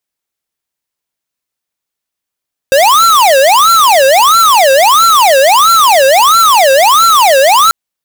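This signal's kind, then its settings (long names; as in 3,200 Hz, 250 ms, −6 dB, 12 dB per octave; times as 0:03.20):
siren wail 531–1,360 Hz 1.5 per second square −6 dBFS 4.99 s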